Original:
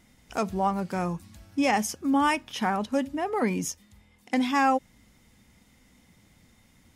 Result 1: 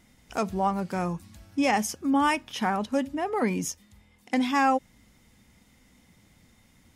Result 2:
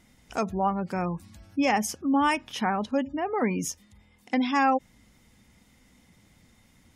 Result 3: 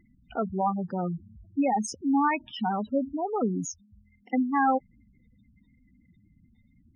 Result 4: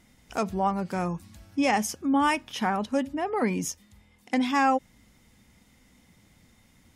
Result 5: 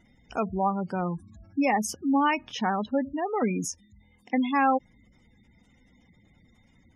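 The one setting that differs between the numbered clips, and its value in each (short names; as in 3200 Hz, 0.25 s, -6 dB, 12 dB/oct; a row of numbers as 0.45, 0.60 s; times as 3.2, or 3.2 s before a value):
spectral gate, under each frame's peak: -60, -35, -10, -50, -20 dB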